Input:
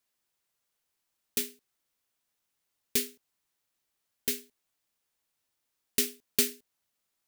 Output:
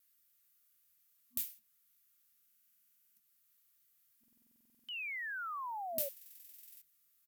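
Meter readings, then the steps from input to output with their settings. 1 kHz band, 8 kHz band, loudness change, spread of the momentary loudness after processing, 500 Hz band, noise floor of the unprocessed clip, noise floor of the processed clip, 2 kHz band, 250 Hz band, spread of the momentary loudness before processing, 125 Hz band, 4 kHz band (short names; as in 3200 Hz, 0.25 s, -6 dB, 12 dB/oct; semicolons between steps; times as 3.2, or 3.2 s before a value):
+17.0 dB, -16.5 dB, -9.5 dB, 18 LU, -7.5 dB, -82 dBFS, -73 dBFS, +1.0 dB, -21.5 dB, 9 LU, under -10 dB, -13.5 dB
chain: FFT band-reject 240–1100 Hz; compressor 8:1, threshold -40 dBFS, peak gain reduction 19.5 dB; flange 0.5 Hz, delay 7.2 ms, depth 4.9 ms, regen +70%; wow and flutter 61 cents; HPF 50 Hz; high shelf 9500 Hz +9.5 dB; doubler 23 ms -11.5 dB; painted sound fall, 4.85–6.09, 540–3200 Hz -44 dBFS; bell 14000 Hz +9.5 dB 0.52 oct; transient shaper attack -6 dB, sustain -1 dB; stuck buffer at 2.47/4.19/6.12, samples 2048, times 14; gain +3 dB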